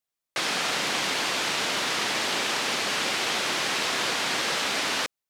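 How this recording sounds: noise floor -87 dBFS; spectral tilt -2.5 dB/octave

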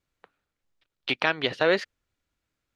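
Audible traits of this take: noise floor -85 dBFS; spectral tilt -1.5 dB/octave

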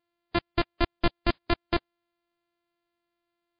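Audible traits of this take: a buzz of ramps at a fixed pitch in blocks of 128 samples; MP3

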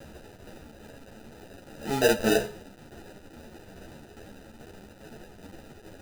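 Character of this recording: a quantiser's noise floor 8-bit, dither triangular; tremolo saw down 2.4 Hz, depth 35%; aliases and images of a low sample rate 1.1 kHz, jitter 0%; a shimmering, thickened sound

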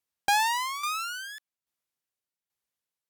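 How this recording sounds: tremolo saw down 1.2 Hz, depth 65%; Vorbis

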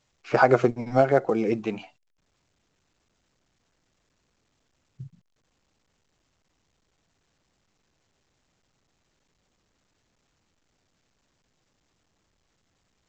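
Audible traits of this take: A-law

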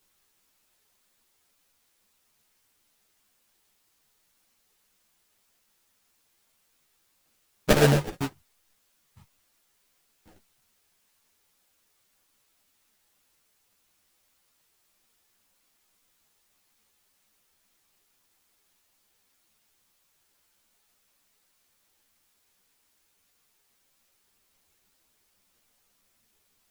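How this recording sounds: aliases and images of a low sample rate 1.1 kHz, jitter 20%; tremolo triangle 6 Hz, depth 50%; a quantiser's noise floor 12-bit, dither triangular; a shimmering, thickened sound

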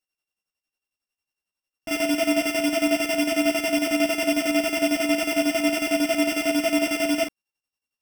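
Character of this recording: a buzz of ramps at a fixed pitch in blocks of 16 samples; chopped level 11 Hz, depth 60%, duty 50%; a shimmering, thickened sound

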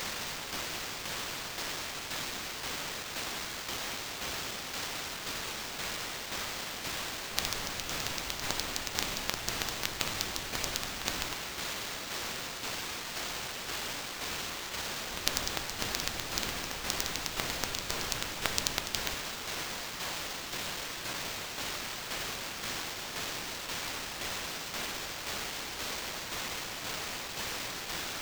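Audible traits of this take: a quantiser's noise floor 6-bit, dither triangular; tremolo saw down 1.9 Hz, depth 45%; aliases and images of a low sample rate 11 kHz, jitter 20%

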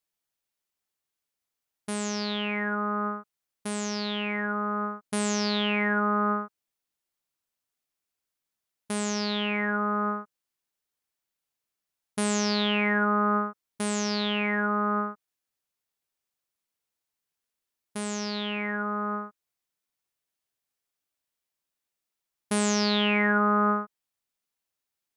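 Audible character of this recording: noise floor -87 dBFS; spectral tilt -3.5 dB/octave

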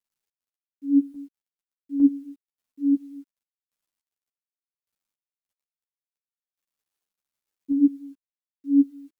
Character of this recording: random-step tremolo; a quantiser's noise floor 12-bit, dither none; a shimmering, thickened sound

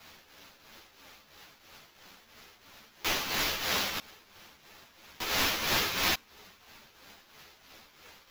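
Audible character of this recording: a quantiser's noise floor 10-bit, dither triangular; tremolo triangle 3 Hz, depth 70%; aliases and images of a low sample rate 8.9 kHz, jitter 0%; a shimmering, thickened sound

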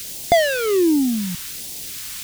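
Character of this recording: a quantiser's noise floor 8-bit, dither triangular; phasing stages 2, 1.3 Hz, lowest notch 520–1300 Hz

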